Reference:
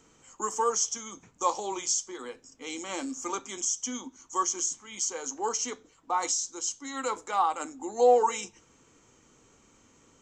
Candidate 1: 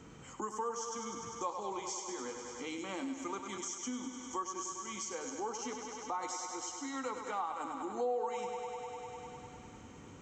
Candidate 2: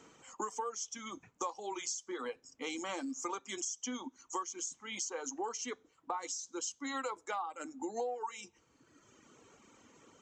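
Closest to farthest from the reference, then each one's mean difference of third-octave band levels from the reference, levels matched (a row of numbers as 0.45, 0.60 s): 2, 1; 4.5, 9.0 dB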